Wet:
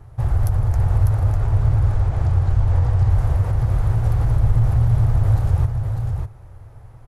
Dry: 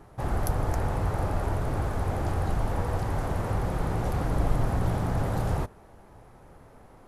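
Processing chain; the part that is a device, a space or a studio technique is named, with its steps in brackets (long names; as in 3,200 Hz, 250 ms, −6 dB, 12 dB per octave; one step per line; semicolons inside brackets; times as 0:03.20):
0:01.37–0:03.12: low-pass filter 8,000 Hz 12 dB per octave
car stereo with a boomy subwoofer (low shelf with overshoot 150 Hz +10.5 dB, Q 3; brickwall limiter −9.5 dBFS, peak gain reduction 8 dB)
single-tap delay 599 ms −5.5 dB
level −1 dB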